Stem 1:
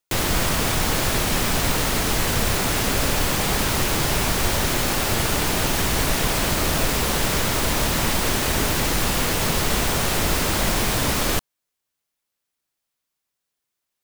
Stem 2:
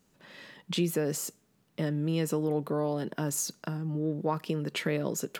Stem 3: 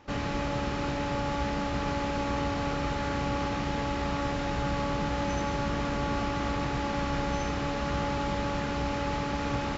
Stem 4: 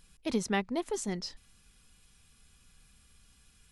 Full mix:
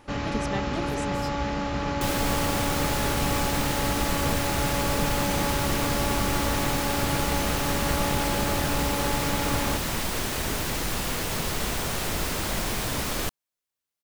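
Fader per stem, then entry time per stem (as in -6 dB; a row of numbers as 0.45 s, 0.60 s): -7.0 dB, -14.0 dB, +2.0 dB, -3.5 dB; 1.90 s, 0.00 s, 0.00 s, 0.00 s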